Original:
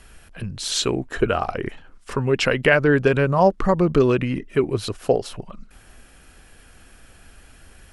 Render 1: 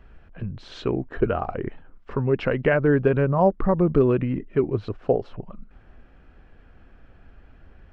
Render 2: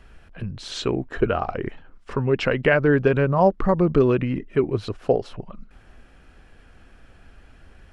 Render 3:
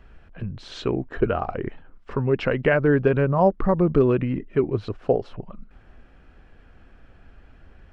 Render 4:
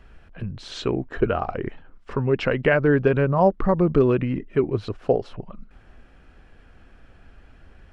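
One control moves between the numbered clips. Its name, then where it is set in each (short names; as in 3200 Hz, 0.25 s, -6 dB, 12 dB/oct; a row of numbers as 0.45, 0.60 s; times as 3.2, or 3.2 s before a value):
tape spacing loss, at 10 kHz: 46, 20, 37, 29 dB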